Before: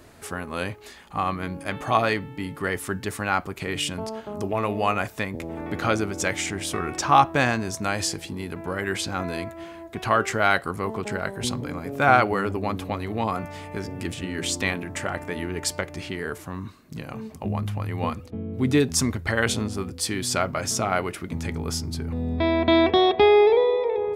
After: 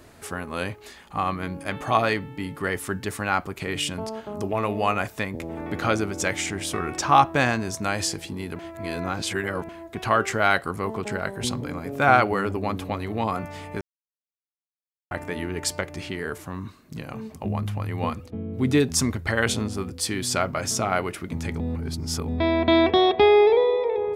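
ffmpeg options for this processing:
ffmpeg -i in.wav -filter_complex "[0:a]asplit=7[link_01][link_02][link_03][link_04][link_05][link_06][link_07];[link_01]atrim=end=8.592[link_08];[link_02]atrim=start=8.588:end=9.692,asetpts=PTS-STARTPTS,areverse[link_09];[link_03]atrim=start=9.688:end=13.81,asetpts=PTS-STARTPTS,afade=type=out:start_time=4.118:duration=0.004:curve=hsin[link_10];[link_04]atrim=start=13.81:end=15.11,asetpts=PTS-STARTPTS,volume=0[link_11];[link_05]atrim=start=15.11:end=21.602,asetpts=PTS-STARTPTS,afade=type=in:duration=0.004:curve=hsin[link_12];[link_06]atrim=start=21.598:end=22.282,asetpts=PTS-STARTPTS,areverse[link_13];[link_07]atrim=start=22.278[link_14];[link_08][link_09]acrossfade=duration=0.004:curve1=hsin:curve2=hsin[link_15];[link_10][link_11][link_12]concat=n=3:v=0:a=1[link_16];[link_15][link_16]acrossfade=duration=0.004:curve1=hsin:curve2=hsin[link_17];[link_17][link_13]acrossfade=duration=0.004:curve1=hsin:curve2=hsin[link_18];[link_18][link_14]acrossfade=duration=0.004:curve1=hsin:curve2=hsin" out.wav

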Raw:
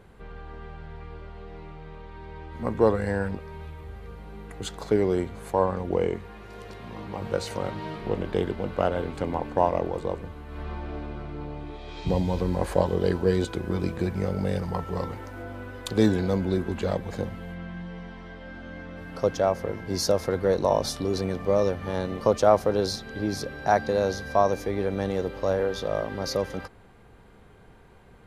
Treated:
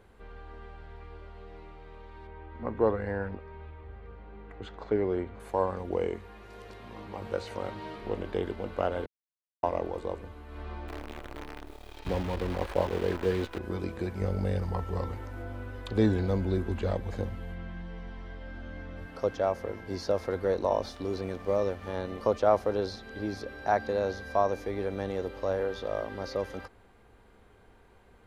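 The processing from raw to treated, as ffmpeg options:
ffmpeg -i in.wav -filter_complex "[0:a]asettb=1/sr,asplit=3[link_01][link_02][link_03];[link_01]atrim=end=2.274[link_04];[link_02]atrim=start=2.27:end=5.4,asetpts=PTS-STARTPTS,afade=type=in:duration=0.004:curve=qsin,afade=type=out:start_time=3.126:duration=0.004:curve=qsin,lowpass=2500[link_05];[link_03]atrim=start=5.396[link_06];[link_04][link_05]acrossfade=duration=0.004:curve1=hsin:curve2=qsin[link_07];[link_07][link_06]acrossfade=duration=0.004:curve1=qsin:curve2=hsin,asettb=1/sr,asplit=3[link_08][link_09][link_10];[link_08]atrim=end=10.884[link_11];[link_09]atrim=start=10.88:end=13.59,asetpts=PTS-STARTPTS,afade=type=in:duration=0.004:curve=qsin,afade=type=out:start_time=2.706:duration=0.004:curve=qsin,acrusher=bits=6:dc=4:mix=0:aa=0.000001[link_12];[link_10]atrim=start=13.586[link_13];[link_11][link_12]acrossfade=duration=0.004:curve1=hsin:curve2=qsin[link_14];[link_14][link_13]acrossfade=duration=0.004:curve1=qsin:curve2=hsin,asettb=1/sr,asplit=3[link_15][link_16][link_17];[link_15]atrim=end=14.204[link_18];[link_16]atrim=start=14.2:end=19.06,asetpts=PTS-STARTPTS,afade=type=in:duration=0.004:curve=qsin,afade=type=out:start_time=4.856:duration=0.004:curve=qsin,lowshelf=frequency=120:gain=11.5[link_19];[link_17]atrim=start=19.056[link_20];[link_18][link_19]acrossfade=duration=0.004:curve1=hsin:curve2=qsin[link_21];[link_21][link_20]acrossfade=duration=0.004:curve1=qsin:curve2=hsin,asettb=1/sr,asplit=3[link_22][link_23][link_24];[link_22]atrim=end=20.844[link_25];[link_23]atrim=start=20.84:end=21.89,asetpts=PTS-STARTPTS,afade=type=in:duration=0.004:curve=qsin,afade=type=out:start_time=1.046:duration=0.004:curve=qsin,aeval=exprs='sgn(val(0))*max(abs(val(0))-0.00398,0)':channel_layout=same[link_26];[link_24]atrim=start=21.886[link_27];[link_25][link_26]acrossfade=duration=0.004:curve1=hsin:curve2=qsin[link_28];[link_28][link_27]acrossfade=duration=0.004:curve1=qsin:curve2=hsin,asplit=3[link_29][link_30][link_31];[link_29]atrim=end=9.06,asetpts=PTS-STARTPTS,afade=type=out:start_time=9.056:duration=0.004:curve=hsin[link_32];[link_30]atrim=start=9.06:end=9.63,asetpts=PTS-STARTPTS,volume=0[link_33];[link_31]atrim=start=9.63,asetpts=PTS-STARTPTS,afade=type=in:duration=0.004:curve=hsin[link_34];[link_32][link_33][link_34]concat=n=3:v=0:a=1,equalizer=frequency=150:width=2.7:gain=-11,acrossover=split=3900[link_35][link_36];[link_36]acompressor=threshold=-51dB:ratio=4:attack=1:release=60[link_37];[link_35][link_37]amix=inputs=2:normalize=0,volume=-4.5dB" out.wav

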